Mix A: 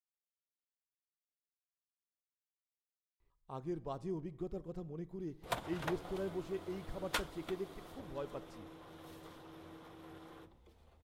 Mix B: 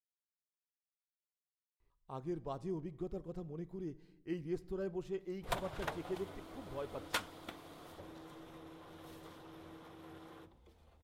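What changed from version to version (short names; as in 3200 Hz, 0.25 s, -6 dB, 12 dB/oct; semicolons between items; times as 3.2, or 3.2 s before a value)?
speech: entry -1.40 s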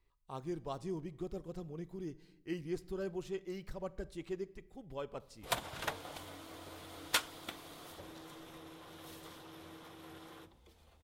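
speech: entry -1.80 s; master: add high shelf 2100 Hz +9 dB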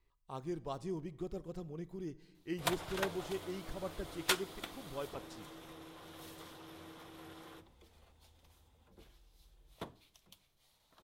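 background: entry -2.85 s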